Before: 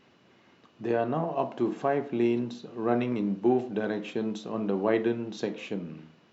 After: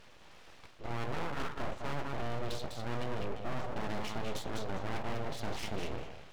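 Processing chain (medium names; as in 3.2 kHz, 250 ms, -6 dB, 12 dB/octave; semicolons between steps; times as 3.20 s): reverse; compression 6:1, threshold -35 dBFS, peak gain reduction 15.5 dB; reverse; thinning echo 201 ms, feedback 22%, high-pass 370 Hz, level -4 dB; valve stage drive 36 dB, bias 0.6; full-wave rectifier; trim +8.5 dB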